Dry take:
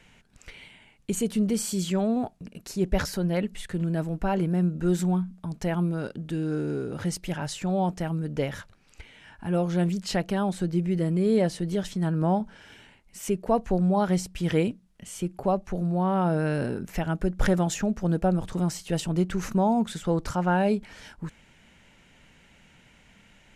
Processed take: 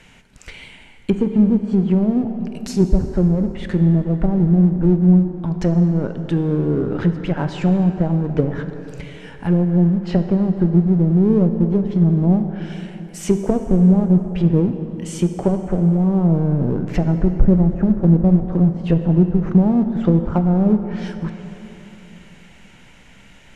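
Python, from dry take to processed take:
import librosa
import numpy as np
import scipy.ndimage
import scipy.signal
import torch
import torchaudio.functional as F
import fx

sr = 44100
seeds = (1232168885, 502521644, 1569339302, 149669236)

p1 = fx.env_lowpass_down(x, sr, base_hz=300.0, full_db=-22.0)
p2 = fx.backlash(p1, sr, play_db=-23.0)
p3 = p1 + (p2 * librosa.db_to_amplitude(-4.5))
p4 = fx.rev_plate(p3, sr, seeds[0], rt60_s=3.4, hf_ratio=0.6, predelay_ms=0, drr_db=7.0)
y = p4 * librosa.db_to_amplitude(8.0)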